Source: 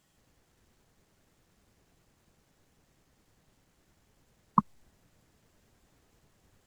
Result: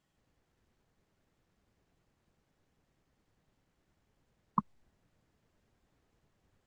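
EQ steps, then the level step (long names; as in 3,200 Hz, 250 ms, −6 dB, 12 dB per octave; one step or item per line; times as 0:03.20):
high-shelf EQ 6,400 Hz −12 dB
−7.0 dB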